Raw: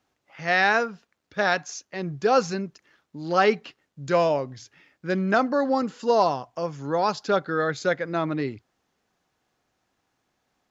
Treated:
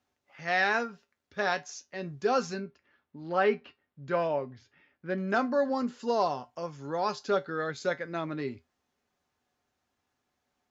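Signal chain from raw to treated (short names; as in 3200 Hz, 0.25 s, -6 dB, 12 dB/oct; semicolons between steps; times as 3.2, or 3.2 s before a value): 2.58–5.18 LPF 2800 Hz 12 dB/oct; resonator 81 Hz, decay 0.17 s, harmonics odd, mix 70%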